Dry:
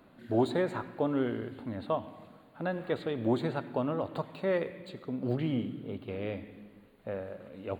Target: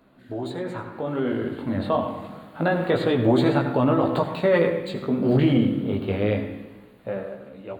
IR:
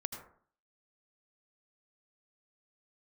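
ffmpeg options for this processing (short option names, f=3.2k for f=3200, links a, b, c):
-filter_complex "[0:a]flanger=delay=15:depth=6.6:speed=0.27,alimiter=level_in=3dB:limit=-24dB:level=0:latency=1:release=27,volume=-3dB,asplit=2[a][b];[1:a]atrim=start_sample=2205[c];[b][c]afir=irnorm=-1:irlink=0,volume=3.5dB[d];[a][d]amix=inputs=2:normalize=0,dynaudnorm=f=420:g=7:m=13dB,volume=-3.5dB"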